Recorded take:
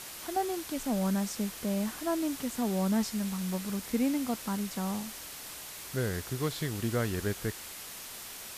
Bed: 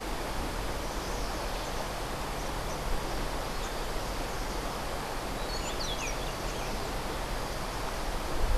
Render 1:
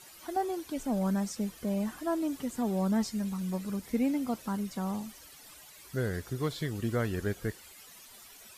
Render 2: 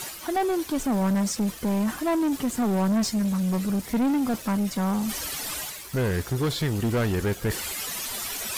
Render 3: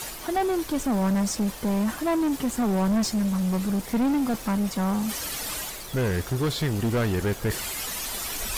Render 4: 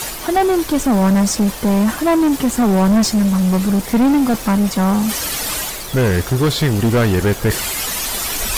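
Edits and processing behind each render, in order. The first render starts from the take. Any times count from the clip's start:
broadband denoise 13 dB, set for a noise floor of −44 dBFS
reversed playback; upward compression, threshold −33 dBFS; reversed playback; leveller curve on the samples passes 3
mix in bed −10 dB
level +10 dB

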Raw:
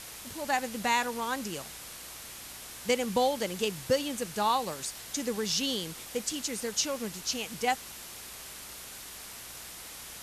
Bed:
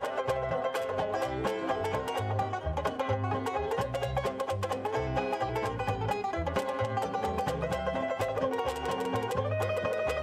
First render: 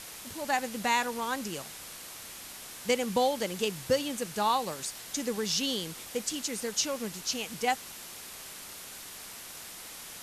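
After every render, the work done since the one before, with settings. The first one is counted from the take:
hum removal 60 Hz, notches 2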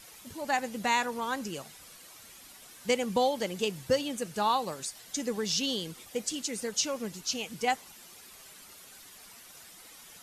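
broadband denoise 10 dB, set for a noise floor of −45 dBFS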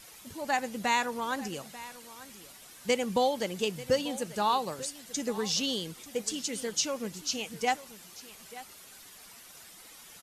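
single-tap delay 890 ms −17 dB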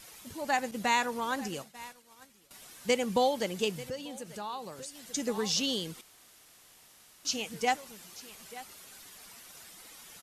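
0:00.71–0:02.51: downward expander −41 dBFS
0:03.88–0:05.14: downward compressor 2 to 1, threshold −44 dBFS
0:06.01–0:07.25: fill with room tone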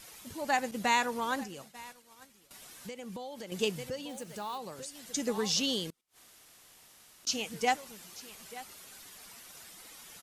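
0:01.43–0:03.52: downward compressor, threshold −40 dBFS
0:04.09–0:04.58: floating-point word with a short mantissa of 2 bits
0:05.90–0:07.27: gate with flip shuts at −46 dBFS, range −31 dB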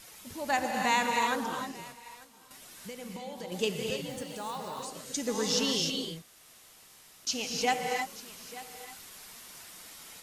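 reverb whose tail is shaped and stops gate 330 ms rising, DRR 1.5 dB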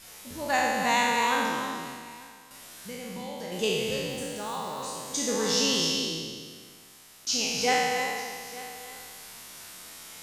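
peak hold with a decay on every bin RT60 1.73 s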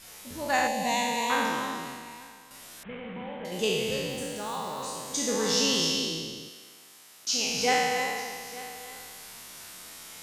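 0:00.67–0:01.30: phaser with its sweep stopped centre 360 Hz, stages 6
0:02.83–0:03.45: variable-slope delta modulation 16 kbit/s
0:06.48–0:07.46: high-pass filter 570 Hz → 210 Hz 6 dB per octave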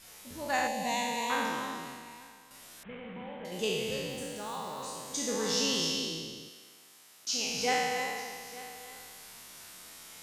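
level −4.5 dB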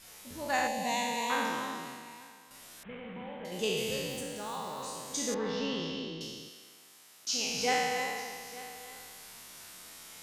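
0:00.78–0:02.48: high-pass filter 110 Hz
0:03.77–0:04.21: high-shelf EQ 6,800 Hz +6.5 dB
0:05.34–0:06.21: high-frequency loss of the air 320 metres

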